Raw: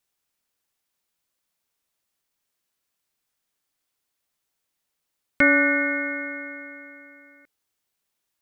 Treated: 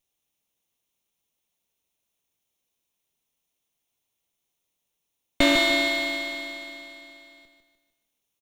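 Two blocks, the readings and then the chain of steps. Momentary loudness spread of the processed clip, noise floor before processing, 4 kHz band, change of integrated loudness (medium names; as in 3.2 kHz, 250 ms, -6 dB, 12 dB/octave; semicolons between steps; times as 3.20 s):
19 LU, -80 dBFS, no reading, -2.0 dB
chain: comb filter that takes the minimum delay 0.32 ms; feedback delay 150 ms, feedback 43%, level -7 dB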